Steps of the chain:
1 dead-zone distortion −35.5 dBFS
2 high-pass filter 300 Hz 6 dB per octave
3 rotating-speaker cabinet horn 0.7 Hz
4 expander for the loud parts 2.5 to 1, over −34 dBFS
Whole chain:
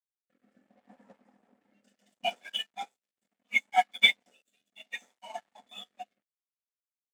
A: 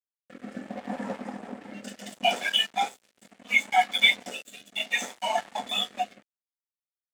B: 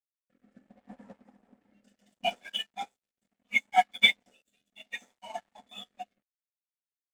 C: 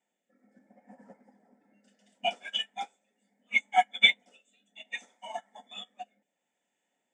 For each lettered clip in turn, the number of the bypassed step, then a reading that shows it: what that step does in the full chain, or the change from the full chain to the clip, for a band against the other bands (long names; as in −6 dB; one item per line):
4, 250 Hz band +12.0 dB
2, 250 Hz band +5.0 dB
1, distortion level −13 dB